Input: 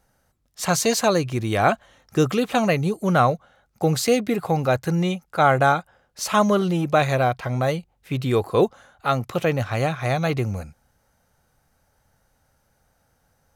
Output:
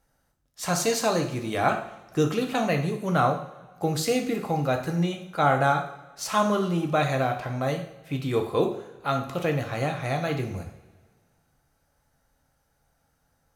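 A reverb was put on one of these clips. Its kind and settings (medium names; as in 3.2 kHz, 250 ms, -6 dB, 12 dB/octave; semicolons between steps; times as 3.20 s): two-slope reverb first 0.57 s, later 1.8 s, from -17 dB, DRR 3 dB; trim -6 dB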